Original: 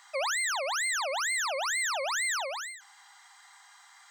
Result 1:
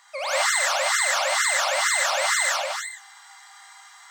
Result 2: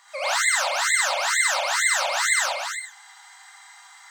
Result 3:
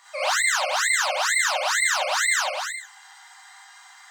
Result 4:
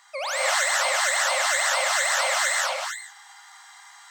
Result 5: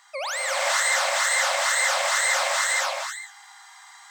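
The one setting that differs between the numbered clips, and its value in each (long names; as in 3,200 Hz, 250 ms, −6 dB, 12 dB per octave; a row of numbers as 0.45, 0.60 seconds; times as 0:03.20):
reverb whose tail is shaped and stops, gate: 220, 130, 80, 330, 530 milliseconds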